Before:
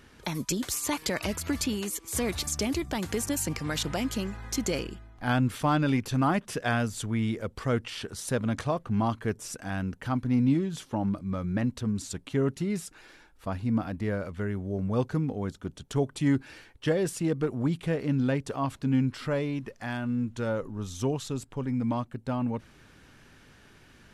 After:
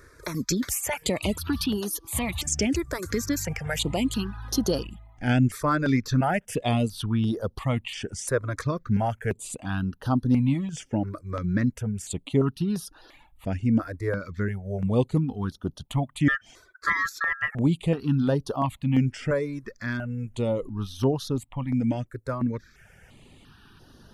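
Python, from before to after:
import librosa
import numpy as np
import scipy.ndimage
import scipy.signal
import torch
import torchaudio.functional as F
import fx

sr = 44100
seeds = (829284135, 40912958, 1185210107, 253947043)

y = fx.ring_mod(x, sr, carrier_hz=1500.0, at=(16.28, 17.55))
y = fx.dereverb_blind(y, sr, rt60_s=0.55)
y = fx.phaser_held(y, sr, hz=2.9, low_hz=800.0, high_hz=7600.0)
y = y * 10.0 ** (6.0 / 20.0)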